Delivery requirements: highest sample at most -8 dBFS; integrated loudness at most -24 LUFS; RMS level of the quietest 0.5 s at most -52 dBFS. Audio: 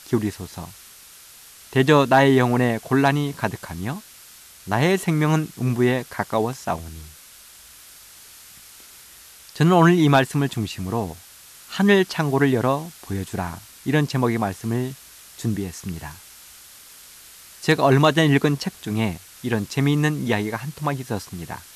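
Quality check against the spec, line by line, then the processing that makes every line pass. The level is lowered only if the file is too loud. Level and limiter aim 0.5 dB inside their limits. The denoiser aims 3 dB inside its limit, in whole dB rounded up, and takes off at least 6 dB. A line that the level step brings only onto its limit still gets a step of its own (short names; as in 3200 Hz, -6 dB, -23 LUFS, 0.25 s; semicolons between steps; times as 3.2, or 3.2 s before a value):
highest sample -4.5 dBFS: fail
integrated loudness -21.5 LUFS: fail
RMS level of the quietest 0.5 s -46 dBFS: fail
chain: denoiser 6 dB, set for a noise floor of -46 dBFS; gain -3 dB; limiter -8.5 dBFS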